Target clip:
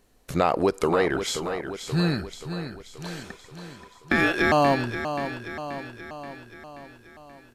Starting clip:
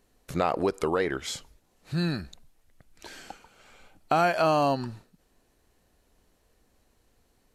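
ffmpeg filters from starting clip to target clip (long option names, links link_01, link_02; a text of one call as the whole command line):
ffmpeg -i in.wav -filter_complex "[0:a]asettb=1/sr,asplit=3[link_01][link_02][link_03];[link_01]atrim=end=3.234[link_04];[link_02]atrim=start=3.23:end=4.52,asetpts=PTS-STARTPTS,afade=type=in:duration=0.004:curve=qsin,afade=type=out:start_time=1.286:duration=0.004:curve=qsin,aeval=exprs='val(0)*sin(2*PI*1000*n/s)':channel_layout=same[link_05];[link_03]atrim=start=4.516[link_06];[link_04][link_05]acrossfade=duration=0.004:curve1=hsin:curve2=qsin[link_07];[link_07][link_06]acrossfade=duration=0.004:curve1=qsin:curve2=hsin,asplit=2[link_08][link_09];[link_09]aecho=0:1:530|1060|1590|2120|2650|3180|3710:0.335|0.194|0.113|0.0654|0.0379|0.022|0.0128[link_10];[link_08][link_10]amix=inputs=2:normalize=0,asettb=1/sr,asplit=3[link_11][link_12][link_13];[link_11]atrim=end=1.044[link_14];[link_12]atrim=start=1.04:end=2.01,asetpts=PTS-STARTPTS,afade=type=in:duration=0.004:curve=qsin,afade=type=out:start_time=0.966:duration=0.004:curve=qsin,aeval=exprs='0.158*(cos(1*acos(clip(val(0)/0.158,-1,1)))-cos(1*PI/2))+0.00398*(cos(5*acos(clip(val(0)/0.158,-1,1)))-cos(5*PI/2))':channel_layout=same[link_15];[link_13]atrim=start=2.006[link_16];[link_14][link_15]acrossfade=duration=0.004:curve1=hsin:curve2=qsin[link_17];[link_17][link_16]acrossfade=duration=0.004:curve1=qsin:curve2=hsin,volume=4dB" out.wav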